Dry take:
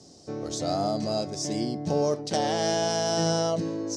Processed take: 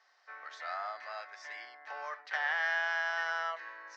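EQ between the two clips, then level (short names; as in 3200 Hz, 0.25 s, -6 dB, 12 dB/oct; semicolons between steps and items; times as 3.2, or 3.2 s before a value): HPF 1100 Hz 24 dB/oct; synth low-pass 1800 Hz, resonance Q 3.9; air absorption 65 m; 0.0 dB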